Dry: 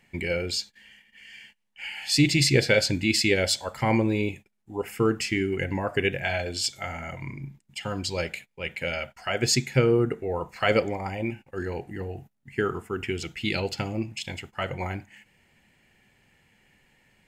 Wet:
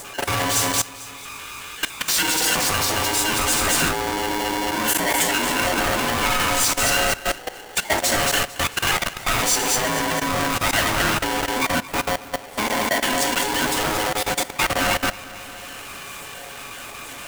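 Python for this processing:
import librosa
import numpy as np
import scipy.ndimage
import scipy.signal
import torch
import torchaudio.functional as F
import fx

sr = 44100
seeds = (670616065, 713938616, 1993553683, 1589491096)

p1 = fx.spec_dropout(x, sr, seeds[0], share_pct=39)
p2 = scipy.signal.sosfilt(scipy.signal.butter(2, 59.0, 'highpass', fs=sr, output='sos'), p1)
p3 = p2 + 0.31 * np.pad(p2, (int(3.3 * sr / 1000.0), 0))[:len(p2)]
p4 = p3 + fx.echo_feedback(p3, sr, ms=223, feedback_pct=33, wet_db=-8.5, dry=0)
p5 = fx.power_curve(p4, sr, exponent=0.35)
p6 = fx.rev_fdn(p5, sr, rt60_s=0.96, lf_ratio=1.5, hf_ratio=0.75, size_ms=27.0, drr_db=3.5)
p7 = fx.level_steps(p6, sr, step_db=17)
p8 = fx.graphic_eq(p7, sr, hz=(125, 250, 500, 4000, 8000), db=(-6, -9, -6, -11, 4))
p9 = p8 * np.sign(np.sin(2.0 * np.pi * 630.0 * np.arange(len(p8)) / sr))
y = F.gain(torch.from_numpy(p9), 1.5).numpy()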